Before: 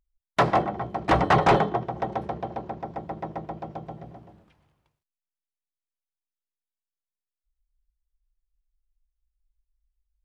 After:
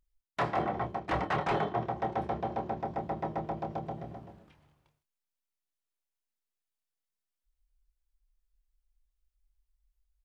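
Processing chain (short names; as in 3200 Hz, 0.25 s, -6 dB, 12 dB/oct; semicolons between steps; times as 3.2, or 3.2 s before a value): dynamic EQ 2000 Hz, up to +4 dB, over -38 dBFS, Q 0.87; reverse; compressor 6:1, threshold -29 dBFS, peak gain reduction 14.5 dB; reverse; doubler 27 ms -8 dB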